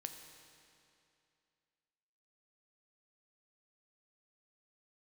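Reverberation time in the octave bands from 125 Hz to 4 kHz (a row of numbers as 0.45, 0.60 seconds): 2.6, 2.6, 2.6, 2.6, 2.5, 2.3 seconds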